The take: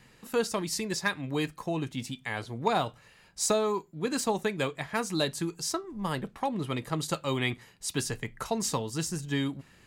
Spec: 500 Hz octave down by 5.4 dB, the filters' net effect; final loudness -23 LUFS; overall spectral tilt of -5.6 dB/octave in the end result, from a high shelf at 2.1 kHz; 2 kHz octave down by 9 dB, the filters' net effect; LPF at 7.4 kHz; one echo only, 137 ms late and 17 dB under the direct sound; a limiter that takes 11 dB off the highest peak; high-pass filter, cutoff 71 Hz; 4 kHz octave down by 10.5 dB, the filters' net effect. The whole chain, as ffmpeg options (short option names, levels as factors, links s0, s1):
-af "highpass=71,lowpass=7400,equalizer=f=500:t=o:g=-6,equalizer=f=2000:t=o:g=-6.5,highshelf=f=2100:g=-7,equalizer=f=4000:t=o:g=-4,alimiter=level_in=1.41:limit=0.0631:level=0:latency=1,volume=0.708,aecho=1:1:137:0.141,volume=5.96"